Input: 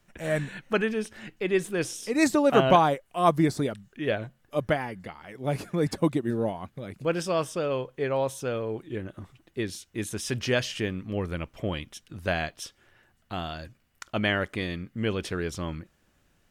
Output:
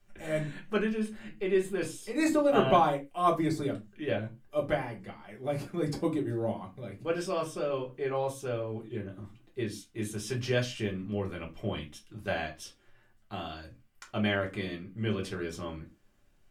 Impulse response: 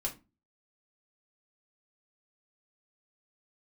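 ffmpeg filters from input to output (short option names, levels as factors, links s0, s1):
-filter_complex "[0:a]asettb=1/sr,asplit=3[s0][s1][s2];[s0]atrim=end=0.944[s3];[s1]atrim=start=0.94:end=2.75,asetpts=PTS-STARTPTS,afade=t=in:d=0.004:c=qsin,afade=t=out:st=1.806:d=0.004:c=qsin,bandreject=f=5700:w=5.5[s4];[s2]atrim=start=2.746[s5];[s3][s4]acrossfade=d=0.004:c1=hsin:c2=qsin[s6];[s6][s5]acrossfade=d=0.004:c1=qsin:c2=hsin[s7];[1:a]atrim=start_sample=2205,afade=t=out:st=0.2:d=0.01,atrim=end_sample=9261[s8];[s7][s8]afir=irnorm=-1:irlink=0,volume=0.447"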